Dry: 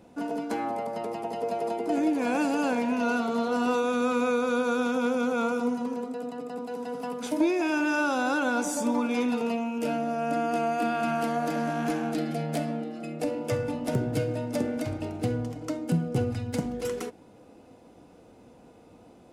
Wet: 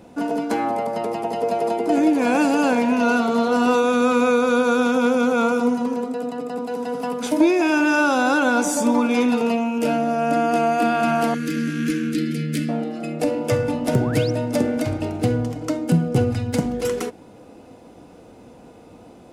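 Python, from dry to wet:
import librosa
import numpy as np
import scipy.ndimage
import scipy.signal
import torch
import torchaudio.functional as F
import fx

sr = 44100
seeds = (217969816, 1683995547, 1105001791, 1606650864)

y = fx.cheby1_bandstop(x, sr, low_hz=340.0, high_hz=1800.0, order=2, at=(11.34, 12.69))
y = fx.spec_paint(y, sr, seeds[0], shape='rise', start_s=13.95, length_s=0.36, low_hz=450.0, high_hz=6100.0, level_db=-44.0)
y = F.gain(torch.from_numpy(y), 8.0).numpy()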